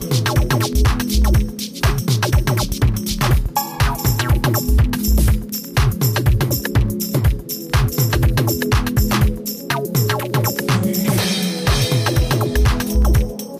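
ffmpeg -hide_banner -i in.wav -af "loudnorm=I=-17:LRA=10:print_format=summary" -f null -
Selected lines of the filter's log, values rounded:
Input Integrated:    -17.8 LUFS
Input True Peak:      -5.4 dBTP
Input LRA:             0.7 LU
Input Threshold:     -27.8 LUFS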